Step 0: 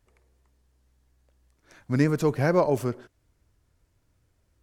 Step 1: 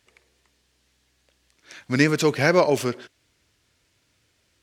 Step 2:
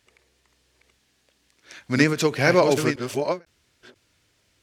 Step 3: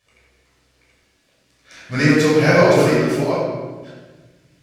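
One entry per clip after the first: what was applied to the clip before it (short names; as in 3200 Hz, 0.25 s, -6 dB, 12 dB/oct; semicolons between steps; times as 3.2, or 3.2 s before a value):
weighting filter D; gain +4 dB
reverse delay 0.493 s, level -4.5 dB; ending taper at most 300 dB/s
shoebox room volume 1000 m³, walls mixed, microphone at 5.8 m; gain -6 dB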